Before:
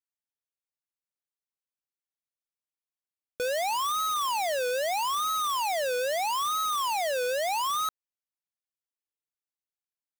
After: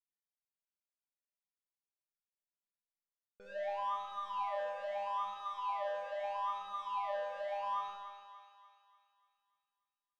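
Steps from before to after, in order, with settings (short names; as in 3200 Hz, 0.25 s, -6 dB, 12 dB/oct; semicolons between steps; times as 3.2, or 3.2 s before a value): LPF 1900 Hz 12 dB/oct; low shelf 64 Hz +8.5 dB; resonator 200 Hz, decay 0.87 s, mix 100%; thinning echo 0.292 s, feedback 52%, high-pass 610 Hz, level -9 dB; on a send at -2.5 dB: reverb RT60 0.45 s, pre-delay 47 ms; on the sum: gain +4.5 dB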